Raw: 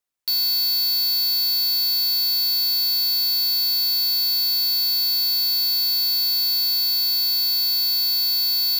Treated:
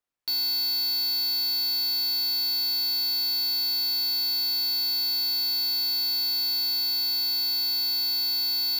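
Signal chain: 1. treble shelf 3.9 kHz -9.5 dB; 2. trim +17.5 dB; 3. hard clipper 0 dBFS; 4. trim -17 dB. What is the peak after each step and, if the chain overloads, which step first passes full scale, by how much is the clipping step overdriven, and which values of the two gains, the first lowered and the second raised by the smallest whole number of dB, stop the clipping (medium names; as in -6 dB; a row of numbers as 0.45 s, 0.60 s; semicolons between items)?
-22.0 dBFS, -4.5 dBFS, -4.5 dBFS, -21.5 dBFS; nothing clips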